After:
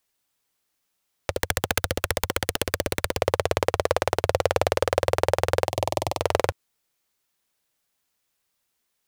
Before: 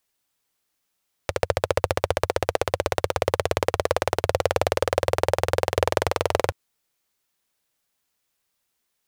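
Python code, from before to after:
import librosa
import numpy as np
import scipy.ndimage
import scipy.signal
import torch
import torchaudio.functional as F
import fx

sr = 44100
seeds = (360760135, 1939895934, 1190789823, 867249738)

y = fx.overflow_wrap(x, sr, gain_db=11.5, at=(1.35, 3.16), fade=0.02)
y = fx.fixed_phaser(y, sr, hz=300.0, stages=8, at=(5.67, 6.2), fade=0.02)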